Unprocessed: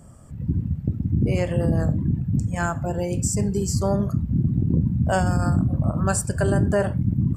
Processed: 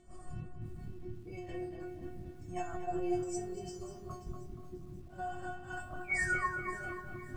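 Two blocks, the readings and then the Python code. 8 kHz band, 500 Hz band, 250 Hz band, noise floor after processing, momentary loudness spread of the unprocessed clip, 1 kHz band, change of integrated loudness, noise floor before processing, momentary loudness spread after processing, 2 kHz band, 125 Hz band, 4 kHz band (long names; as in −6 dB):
−19.5 dB, −15.0 dB, −19.5 dB, −50 dBFS, 5 LU, −10.0 dB, −17.0 dB, −37 dBFS, 15 LU, −3.5 dB, −26.5 dB, −17.0 dB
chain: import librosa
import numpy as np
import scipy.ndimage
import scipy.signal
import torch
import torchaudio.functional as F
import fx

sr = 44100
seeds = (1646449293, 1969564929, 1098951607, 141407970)

y = fx.spec_repair(x, sr, seeds[0], start_s=5.16, length_s=0.62, low_hz=770.0, high_hz=11000.0, source='before')
y = fx.high_shelf(y, sr, hz=6000.0, db=-4.5)
y = fx.over_compress(y, sr, threshold_db=-32.0, ratio=-1.0)
y = fx.spec_paint(y, sr, seeds[1], shape='fall', start_s=6.04, length_s=0.5, low_hz=880.0, high_hz=2500.0, level_db=-29.0)
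y = fx.chorus_voices(y, sr, voices=4, hz=0.28, base_ms=23, depth_ms=4.4, mix_pct=50)
y = fx.volume_shaper(y, sr, bpm=130, per_beat=1, depth_db=-14, release_ms=101.0, shape='slow start')
y = fx.air_absorb(y, sr, metres=62.0)
y = fx.stiff_resonator(y, sr, f0_hz=360.0, decay_s=0.37, stiffness=0.002)
y = fx.echo_filtered(y, sr, ms=238, feedback_pct=44, hz=2600.0, wet_db=-6)
y = fx.echo_crushed(y, sr, ms=537, feedback_pct=35, bits=12, wet_db=-14.0)
y = y * 10.0 ** (15.0 / 20.0)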